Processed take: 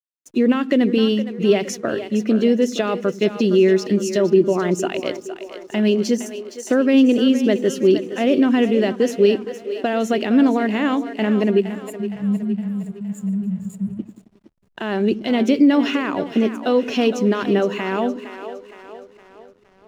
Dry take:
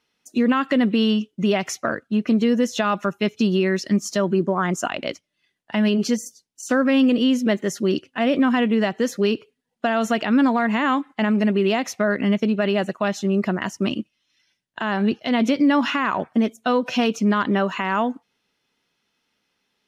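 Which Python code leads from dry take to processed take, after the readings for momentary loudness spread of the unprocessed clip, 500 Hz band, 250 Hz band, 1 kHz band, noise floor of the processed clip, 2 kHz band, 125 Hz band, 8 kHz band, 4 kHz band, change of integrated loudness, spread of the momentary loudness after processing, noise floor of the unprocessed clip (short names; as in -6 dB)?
8 LU, +5.0 dB, +2.0 dB, -3.5 dB, -54 dBFS, -2.5 dB, +0.5 dB, -0.5 dB, -0.5 dB, +2.0 dB, 12 LU, -75 dBFS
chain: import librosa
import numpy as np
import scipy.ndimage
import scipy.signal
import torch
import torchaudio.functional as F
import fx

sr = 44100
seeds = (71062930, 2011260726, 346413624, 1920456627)

y = fx.spec_erase(x, sr, start_s=11.6, length_s=2.4, low_hz=220.0, high_hz=6800.0)
y = fx.curve_eq(y, sr, hz=(220.0, 380.0, 1100.0, 2400.0), db=(0, 8, -7, 0))
y = fx.echo_split(y, sr, split_hz=330.0, low_ms=88, high_ms=464, feedback_pct=52, wet_db=-11.0)
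y = fx.backlash(y, sr, play_db=-45.5)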